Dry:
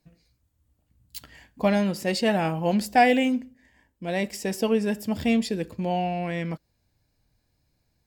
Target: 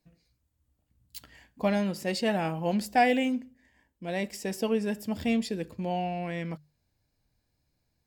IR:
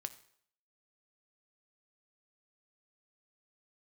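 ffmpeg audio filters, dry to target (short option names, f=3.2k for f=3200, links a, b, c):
-af "bandreject=f=50:t=h:w=6,bandreject=f=100:t=h:w=6,bandreject=f=150:t=h:w=6,volume=-4.5dB"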